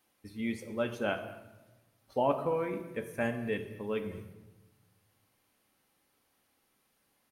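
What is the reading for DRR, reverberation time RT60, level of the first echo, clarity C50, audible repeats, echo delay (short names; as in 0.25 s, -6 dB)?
5.0 dB, 1.1 s, -20.0 dB, 9.5 dB, 1, 0.218 s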